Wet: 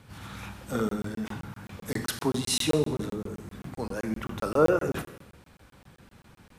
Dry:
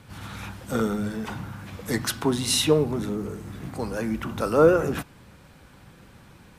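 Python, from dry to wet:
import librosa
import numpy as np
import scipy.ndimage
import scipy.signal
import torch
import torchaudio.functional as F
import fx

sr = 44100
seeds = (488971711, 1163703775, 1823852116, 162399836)

y = fx.rev_schroeder(x, sr, rt60_s=0.9, comb_ms=29, drr_db=8.5)
y = fx.buffer_crackle(y, sr, first_s=0.89, period_s=0.13, block=1024, kind='zero')
y = F.gain(torch.from_numpy(y), -4.0).numpy()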